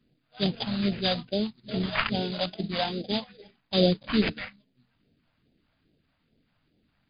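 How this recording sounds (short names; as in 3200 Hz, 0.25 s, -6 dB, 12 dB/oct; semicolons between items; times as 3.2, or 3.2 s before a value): aliases and images of a low sample rate 4200 Hz, jitter 20%; phasing stages 2, 2.4 Hz, lowest notch 350–1100 Hz; MP3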